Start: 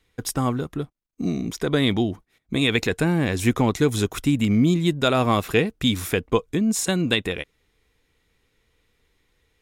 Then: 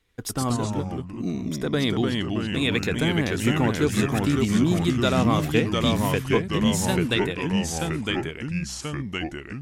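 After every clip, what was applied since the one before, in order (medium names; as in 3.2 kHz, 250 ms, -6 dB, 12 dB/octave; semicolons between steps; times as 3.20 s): ever faster or slower copies 87 ms, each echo -2 st, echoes 3; trim -3.5 dB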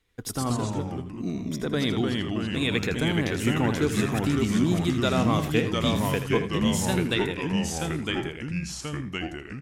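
feedback delay 81 ms, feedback 17%, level -11 dB; trim -2.5 dB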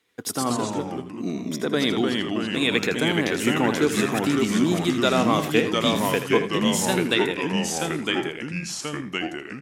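high-pass 230 Hz 12 dB/octave; trim +5 dB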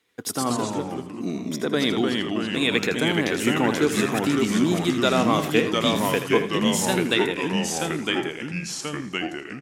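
feedback delay 315 ms, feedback 51%, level -23 dB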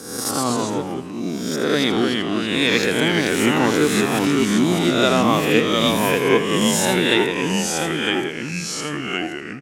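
reverse spectral sustain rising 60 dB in 0.86 s; trim +1.5 dB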